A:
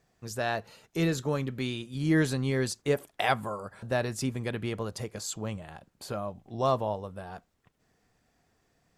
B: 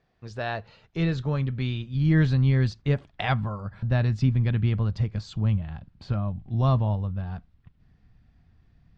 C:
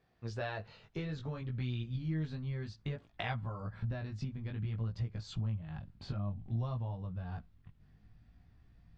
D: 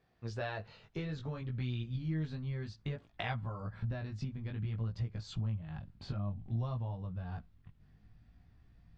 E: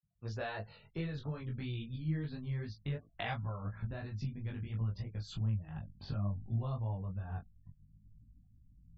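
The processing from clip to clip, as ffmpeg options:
-af "lowpass=f=4400:w=0.5412,lowpass=f=4400:w=1.3066,asubboost=boost=11:cutoff=140"
-af "acompressor=threshold=0.0282:ratio=12,flanger=delay=16.5:depth=4:speed=0.58"
-af anull
-af "afftfilt=real='re*gte(hypot(re,im),0.00126)':imag='im*gte(hypot(re,im),0.00126)':win_size=1024:overlap=0.75,flanger=delay=18.5:depth=3.2:speed=2.9,volume=1.33"

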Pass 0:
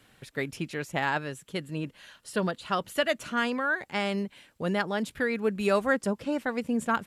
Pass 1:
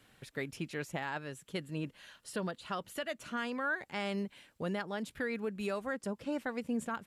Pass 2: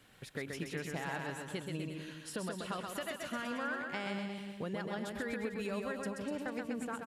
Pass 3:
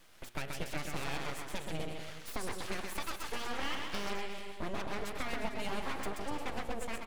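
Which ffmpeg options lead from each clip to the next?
-af "alimiter=limit=0.0794:level=0:latency=1:release=362,volume=0.631"
-filter_complex "[0:a]acompressor=threshold=0.0141:ratio=6,asplit=2[s0][s1];[s1]aecho=0:1:130|247|352.3|447.1|532.4:0.631|0.398|0.251|0.158|0.1[s2];[s0][s2]amix=inputs=2:normalize=0,volume=1.12"
-af "aeval=exprs='abs(val(0))':c=same,bandreject=f=118.6:t=h:w=4,bandreject=f=237.2:t=h:w=4,bandreject=f=355.8:t=h:w=4,bandreject=f=474.4:t=h:w=4,bandreject=f=593:t=h:w=4,bandreject=f=711.6:t=h:w=4,bandreject=f=830.2:t=h:w=4,bandreject=f=948.8:t=h:w=4,bandreject=f=1067.4:t=h:w=4,bandreject=f=1186:t=h:w=4,bandreject=f=1304.6:t=h:w=4,bandreject=f=1423.2:t=h:w=4,bandreject=f=1541.8:t=h:w=4,bandreject=f=1660.4:t=h:w=4,bandreject=f=1779:t=h:w=4,bandreject=f=1897.6:t=h:w=4,bandreject=f=2016.2:t=h:w=4,bandreject=f=2134.8:t=h:w=4,bandreject=f=2253.4:t=h:w=4,bandreject=f=2372:t=h:w=4,bandreject=f=2490.6:t=h:w=4,bandreject=f=2609.2:t=h:w=4,bandreject=f=2727.8:t=h:w=4,bandreject=f=2846.4:t=h:w=4,bandreject=f=2965:t=h:w=4,bandreject=f=3083.6:t=h:w=4,bandreject=f=3202.2:t=h:w=4,bandreject=f=3320.8:t=h:w=4,bandreject=f=3439.4:t=h:w=4,bandreject=f=3558:t=h:w=4,bandreject=f=3676.6:t=h:w=4,bandreject=f=3795.2:t=h:w=4,bandreject=f=3913.8:t=h:w=4,bandreject=f=4032.4:t=h:w=4,bandreject=f=4151:t=h:w=4,bandreject=f=4269.6:t=h:w=4,bandreject=f=4388.2:t=h:w=4,volume=1.58"

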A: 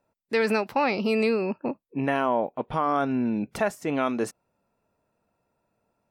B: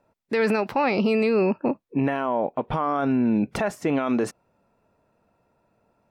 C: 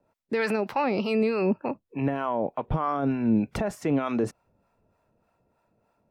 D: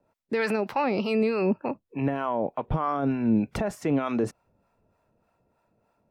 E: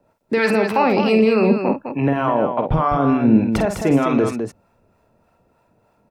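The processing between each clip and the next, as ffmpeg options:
-af "aemphasis=mode=reproduction:type=cd,alimiter=limit=0.0794:level=0:latency=1:release=49,volume=2.37"
-filter_complex "[0:a]acrossover=split=110|3600[s0][s1][s2];[s0]dynaudnorm=f=310:g=9:m=2.66[s3];[s3][s1][s2]amix=inputs=3:normalize=0,acrossover=split=630[s4][s5];[s4]aeval=exprs='val(0)*(1-0.7/2+0.7/2*cos(2*PI*3.3*n/s))':c=same[s6];[s5]aeval=exprs='val(0)*(1-0.7/2-0.7/2*cos(2*PI*3.3*n/s))':c=same[s7];[s6][s7]amix=inputs=2:normalize=0"
-af anull
-af "aecho=1:1:49.56|207:0.447|0.447,volume=2.51"

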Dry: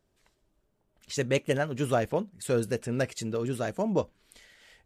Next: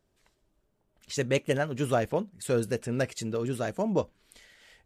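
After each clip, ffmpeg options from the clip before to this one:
-af anull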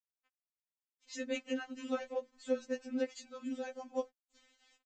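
-af "aresample=16000,aeval=exprs='val(0)*gte(abs(val(0)),0.00211)':c=same,aresample=44100,afftfilt=real='re*3.46*eq(mod(b,12),0)':imag='im*3.46*eq(mod(b,12),0)':win_size=2048:overlap=0.75,volume=0.447"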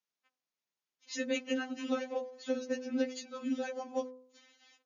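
-filter_complex "[0:a]acrossover=split=250|3000[s0][s1][s2];[s1]acompressor=threshold=0.0158:ratio=5[s3];[s0][s3][s2]amix=inputs=3:normalize=0,bandreject=f=254.9:t=h:w=4,bandreject=f=509.8:t=h:w=4,bandreject=f=764.7:t=h:w=4,bandreject=f=1019.6:t=h:w=4,bandreject=f=1274.5:t=h:w=4,bandreject=f=1529.4:t=h:w=4,bandreject=f=1784.3:t=h:w=4,bandreject=f=2039.2:t=h:w=4,bandreject=f=2294.1:t=h:w=4,bandreject=f=2549:t=h:w=4,bandreject=f=2803.9:t=h:w=4,bandreject=f=3058.8:t=h:w=4,bandreject=f=3313.7:t=h:w=4,bandreject=f=3568.6:t=h:w=4,bandreject=f=3823.5:t=h:w=4,bandreject=f=4078.4:t=h:w=4,bandreject=f=4333.3:t=h:w=4,bandreject=f=4588.2:t=h:w=4,bandreject=f=4843.1:t=h:w=4,bandreject=f=5098:t=h:w=4,bandreject=f=5352.9:t=h:w=4,bandreject=f=5607.8:t=h:w=4,bandreject=f=5862.7:t=h:w=4,bandreject=f=6117.6:t=h:w=4,bandreject=f=6372.5:t=h:w=4,bandreject=f=6627.4:t=h:w=4,bandreject=f=6882.3:t=h:w=4,bandreject=f=7137.2:t=h:w=4,bandreject=f=7392.1:t=h:w=4,bandreject=f=7647:t=h:w=4,bandreject=f=7901.9:t=h:w=4,bandreject=f=8156.8:t=h:w=4,bandreject=f=8411.7:t=h:w=4,bandreject=f=8666.6:t=h:w=4,bandreject=f=8921.5:t=h:w=4,afftfilt=real='re*between(b*sr/4096,130,7000)':imag='im*between(b*sr/4096,130,7000)':win_size=4096:overlap=0.75,volume=2"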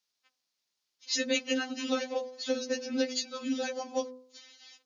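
-af "equalizer=f=4700:t=o:w=1.2:g=11.5,bandreject=f=50:t=h:w=6,bandreject=f=100:t=h:w=6,bandreject=f=150:t=h:w=6,bandreject=f=200:t=h:w=6,bandreject=f=250:t=h:w=6,volume=1.41"

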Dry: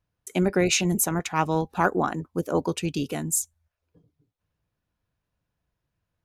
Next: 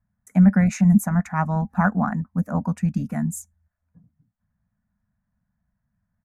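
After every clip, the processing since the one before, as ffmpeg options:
-af "firequalizer=gain_entry='entry(150,0);entry(210,11);entry(350,-28);entry(640,-5);entry(1100,-6);entry(1800,-2);entry(3000,-29);entry(6500,-15)':delay=0.05:min_phase=1,volume=1.78"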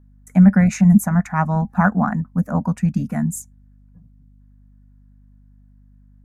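-af "aeval=exprs='val(0)+0.00251*(sin(2*PI*50*n/s)+sin(2*PI*2*50*n/s)/2+sin(2*PI*3*50*n/s)/3+sin(2*PI*4*50*n/s)/4+sin(2*PI*5*50*n/s)/5)':c=same,volume=1.5"

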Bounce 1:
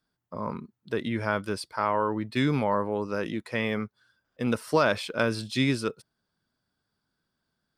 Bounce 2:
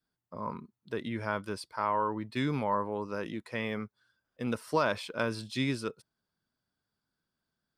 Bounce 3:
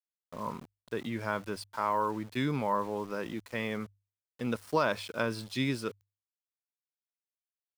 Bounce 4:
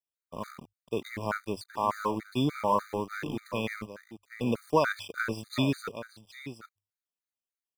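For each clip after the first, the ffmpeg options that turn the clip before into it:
-af "adynamicequalizer=threshold=0.00794:dfrequency=990:dqfactor=5:tfrequency=990:tqfactor=5:attack=5:release=100:ratio=0.375:range=3:mode=boostabove:tftype=bell,volume=0.501"
-af "agate=range=0.0224:threshold=0.00141:ratio=3:detection=peak,aeval=exprs='val(0)*gte(abs(val(0)),0.00473)':c=same,bandreject=f=50:t=h:w=6,bandreject=f=100:t=h:w=6"
-filter_complex "[0:a]asplit=2[s0][s1];[s1]aeval=exprs='val(0)*gte(abs(val(0)),0.02)':c=same,volume=0.668[s2];[s0][s2]amix=inputs=2:normalize=0,aecho=1:1:772:0.266,afftfilt=real='re*gt(sin(2*PI*3.4*pts/sr)*(1-2*mod(floor(b*sr/1024/1200),2)),0)':imag='im*gt(sin(2*PI*3.4*pts/sr)*(1-2*mod(floor(b*sr/1024/1200),2)),0)':win_size=1024:overlap=0.75"

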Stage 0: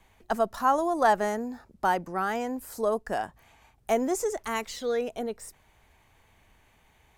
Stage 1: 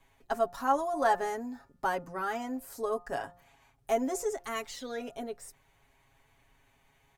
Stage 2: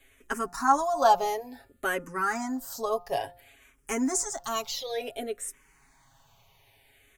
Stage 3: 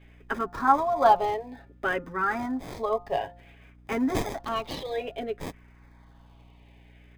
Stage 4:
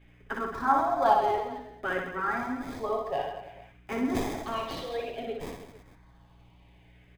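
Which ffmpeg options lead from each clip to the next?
-af "aecho=1:1:7.3:0.81,bandreject=f=175.8:t=h:w=4,bandreject=f=351.6:t=h:w=4,bandreject=f=527.4:t=h:w=4,bandreject=f=703.2:t=h:w=4,bandreject=f=879:t=h:w=4,bandreject=f=1054.8:t=h:w=4,bandreject=f=1230.6:t=h:w=4,bandreject=f=1406.4:t=h:w=4,bandreject=f=1582.2:t=h:w=4,bandreject=f=1758:t=h:w=4,volume=0.473"
-filter_complex "[0:a]highshelf=f=2600:g=7.5,asplit=2[s0][s1];[s1]afreqshift=-0.57[s2];[s0][s2]amix=inputs=2:normalize=1,volume=2"
-filter_complex "[0:a]aeval=exprs='val(0)+0.002*(sin(2*PI*60*n/s)+sin(2*PI*2*60*n/s)/2+sin(2*PI*3*60*n/s)/3+sin(2*PI*4*60*n/s)/4+sin(2*PI*5*60*n/s)/5)':c=same,acrossover=split=3700[s0][s1];[s1]acrusher=samples=31:mix=1:aa=0.000001[s2];[s0][s2]amix=inputs=2:normalize=0,volume=1.19"
-af "aecho=1:1:60|132|218.4|322.1|446.5:0.631|0.398|0.251|0.158|0.1,flanger=delay=2.6:depth=9.3:regen=-74:speed=1.8:shape=triangular"

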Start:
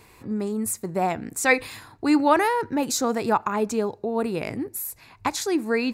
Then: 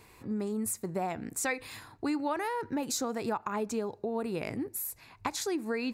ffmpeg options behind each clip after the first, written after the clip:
-af "acompressor=threshold=0.0631:ratio=6,volume=0.596"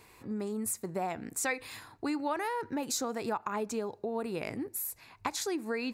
-af "lowshelf=f=260:g=-4.5"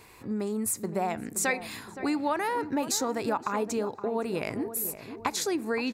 -filter_complex "[0:a]asplit=2[s0][s1];[s1]adelay=519,lowpass=f=1100:p=1,volume=0.299,asplit=2[s2][s3];[s3]adelay=519,lowpass=f=1100:p=1,volume=0.51,asplit=2[s4][s5];[s5]adelay=519,lowpass=f=1100:p=1,volume=0.51,asplit=2[s6][s7];[s7]adelay=519,lowpass=f=1100:p=1,volume=0.51,asplit=2[s8][s9];[s9]adelay=519,lowpass=f=1100:p=1,volume=0.51,asplit=2[s10][s11];[s11]adelay=519,lowpass=f=1100:p=1,volume=0.51[s12];[s0][s2][s4][s6][s8][s10][s12]amix=inputs=7:normalize=0,volume=1.68"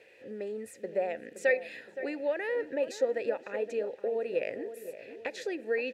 -filter_complex "[0:a]acrusher=bits=8:mix=0:aa=0.000001,asplit=3[s0][s1][s2];[s0]bandpass=f=530:t=q:w=8,volume=1[s3];[s1]bandpass=f=1840:t=q:w=8,volume=0.501[s4];[s2]bandpass=f=2480:t=q:w=8,volume=0.355[s5];[s3][s4][s5]amix=inputs=3:normalize=0,volume=2.66"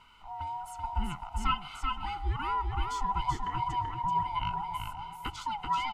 -af "afftfilt=real='real(if(lt(b,1008),b+24*(1-2*mod(floor(b/24),2)),b),0)':imag='imag(if(lt(b,1008),b+24*(1-2*mod(floor(b/24),2)),b),0)':win_size=2048:overlap=0.75,aecho=1:1:384:0.631"

